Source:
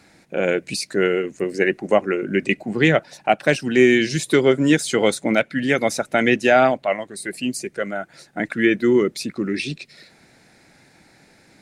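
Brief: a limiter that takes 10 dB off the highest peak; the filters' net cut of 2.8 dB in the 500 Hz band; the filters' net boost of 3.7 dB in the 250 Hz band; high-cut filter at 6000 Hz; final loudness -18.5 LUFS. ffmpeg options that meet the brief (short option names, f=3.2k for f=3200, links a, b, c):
-af "lowpass=6k,equalizer=f=250:t=o:g=7,equalizer=f=500:t=o:g=-7,volume=5.5dB,alimiter=limit=-7dB:level=0:latency=1"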